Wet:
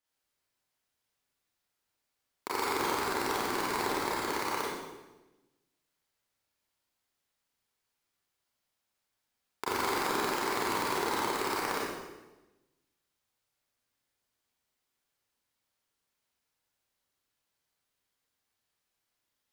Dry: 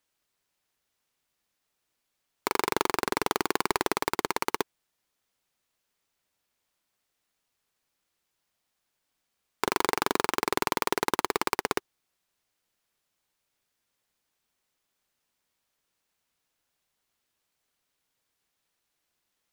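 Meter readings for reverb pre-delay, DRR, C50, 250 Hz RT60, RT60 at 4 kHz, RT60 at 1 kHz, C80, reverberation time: 27 ms, -7.5 dB, -2.0 dB, 1.3 s, 0.95 s, 1.0 s, 1.5 dB, 1.1 s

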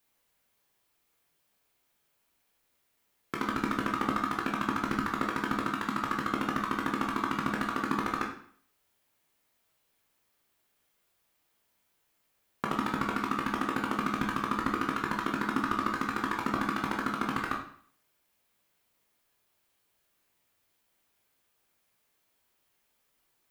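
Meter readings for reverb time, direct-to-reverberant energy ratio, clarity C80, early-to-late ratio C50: 0.55 s, -1.0 dB, 9.5 dB, 6.0 dB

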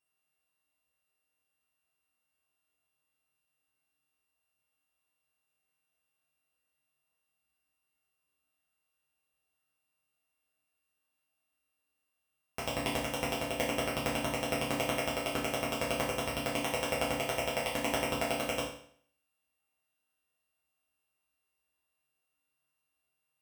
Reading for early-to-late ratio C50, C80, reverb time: 4.5 dB, 8.0 dB, 0.60 s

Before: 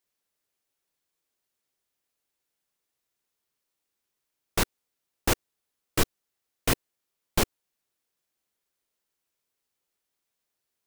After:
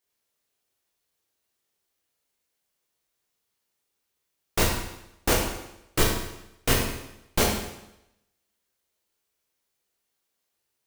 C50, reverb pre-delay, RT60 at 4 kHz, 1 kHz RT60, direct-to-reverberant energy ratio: 3.0 dB, 14 ms, 0.85 s, 0.85 s, -1.5 dB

